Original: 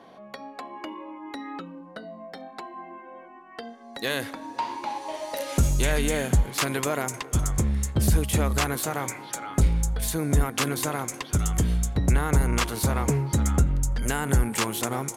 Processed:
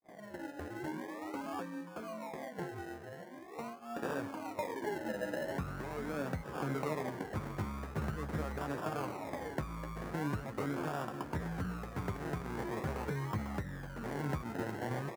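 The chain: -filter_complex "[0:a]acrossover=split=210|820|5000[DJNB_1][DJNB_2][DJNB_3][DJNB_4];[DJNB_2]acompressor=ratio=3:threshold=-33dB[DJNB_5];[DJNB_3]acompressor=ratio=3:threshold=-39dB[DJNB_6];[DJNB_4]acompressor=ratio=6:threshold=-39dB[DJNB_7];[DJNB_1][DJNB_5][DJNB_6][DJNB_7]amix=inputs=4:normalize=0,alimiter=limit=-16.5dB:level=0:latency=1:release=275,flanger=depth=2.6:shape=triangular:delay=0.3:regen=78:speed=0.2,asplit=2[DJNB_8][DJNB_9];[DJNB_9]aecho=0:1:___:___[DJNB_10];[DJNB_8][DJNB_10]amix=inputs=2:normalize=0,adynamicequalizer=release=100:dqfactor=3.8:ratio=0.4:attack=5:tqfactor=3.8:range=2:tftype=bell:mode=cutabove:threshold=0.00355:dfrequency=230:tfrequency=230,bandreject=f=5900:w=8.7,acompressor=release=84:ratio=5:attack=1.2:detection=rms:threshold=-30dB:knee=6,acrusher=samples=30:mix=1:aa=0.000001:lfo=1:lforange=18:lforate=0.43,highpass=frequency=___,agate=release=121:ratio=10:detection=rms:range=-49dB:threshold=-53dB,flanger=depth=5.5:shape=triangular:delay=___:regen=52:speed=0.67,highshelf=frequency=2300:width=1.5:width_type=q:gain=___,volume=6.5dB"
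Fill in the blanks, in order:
894, 0.0708, 130, 8.8, -7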